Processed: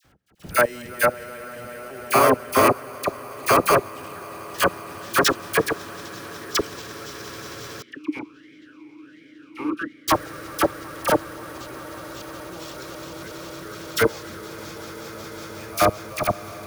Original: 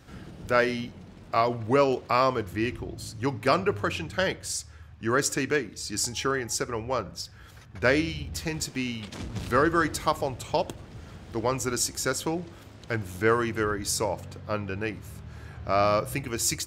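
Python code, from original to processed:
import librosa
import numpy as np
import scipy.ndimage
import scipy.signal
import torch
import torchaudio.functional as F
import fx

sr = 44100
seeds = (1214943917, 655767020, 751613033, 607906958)

y = fx.reverse_delay_fb(x, sr, ms=401, feedback_pct=53, wet_db=-1)
y = fx.step_gate(y, sr, bpm=129, pattern='x..xxxx.xx...', floor_db=-24.0, edge_ms=4.5)
y = fx.echo_diffused(y, sr, ms=497, feedback_pct=78, wet_db=-10)
y = np.repeat(y[::4], 4)[:len(y)]
y = fx.low_shelf(y, sr, hz=450.0, db=-4.0)
y = fx.echo_swell(y, sr, ms=183, loudest=5, wet_db=-9.5)
y = fx.level_steps(y, sr, step_db=22)
y = fx.dispersion(y, sr, late='lows', ms=48.0, hz=1400.0)
y = fx.vowel_sweep(y, sr, vowels='i-u', hz=1.4, at=(7.82, 10.08))
y = y * 10.0 ** (7.5 / 20.0)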